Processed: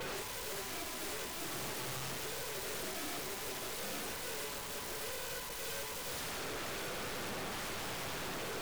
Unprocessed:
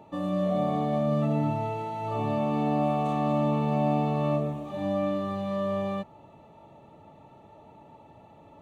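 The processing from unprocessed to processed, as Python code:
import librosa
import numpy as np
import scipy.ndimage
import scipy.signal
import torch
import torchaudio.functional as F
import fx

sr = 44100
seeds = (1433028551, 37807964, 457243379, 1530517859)

y = fx.sine_speech(x, sr)
y = fx.sample_hold(y, sr, seeds[0], rate_hz=1000.0, jitter_pct=0)
y = np.clip(10.0 ** (23.5 / 20.0) * y, -1.0, 1.0) / 10.0 ** (23.5 / 20.0)
y = fx.over_compress(y, sr, threshold_db=-35.0, ratio=-1.0)
y = scipy.signal.sosfilt(scipy.signal.butter(2, 280.0, 'highpass', fs=sr, output='sos'), y)
y = fx.rev_fdn(y, sr, rt60_s=1.1, lf_ratio=1.0, hf_ratio=0.95, size_ms=46.0, drr_db=-1.0)
y = fx.tube_stage(y, sr, drive_db=38.0, bias=0.7)
y = fx.fold_sine(y, sr, drive_db=18, ceiling_db=-34.5)
y = y * librosa.db_to_amplitude(-3.0)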